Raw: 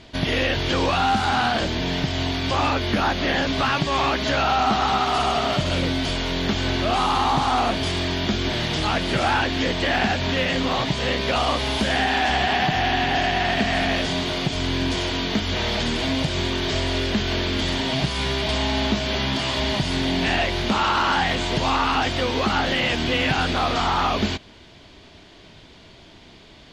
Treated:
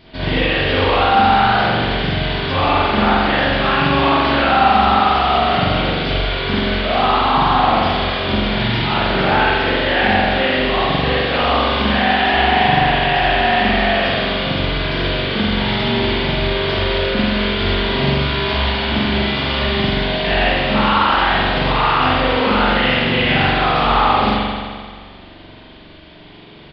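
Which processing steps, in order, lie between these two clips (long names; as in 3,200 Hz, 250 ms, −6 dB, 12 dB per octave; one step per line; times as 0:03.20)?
spring reverb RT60 1.8 s, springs 43 ms, chirp 35 ms, DRR −9 dB
downsampling to 11,025 Hz
level −2.5 dB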